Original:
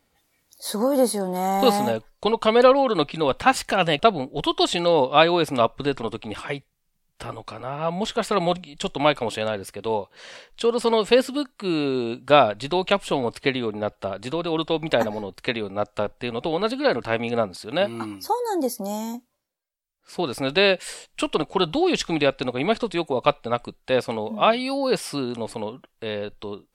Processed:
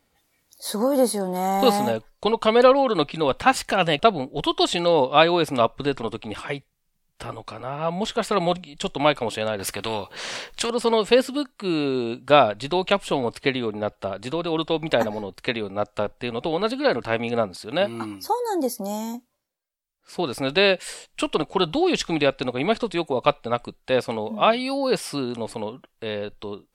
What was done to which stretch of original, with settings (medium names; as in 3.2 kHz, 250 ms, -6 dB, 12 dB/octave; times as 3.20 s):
9.59–10.70 s: spectrum-flattening compressor 2:1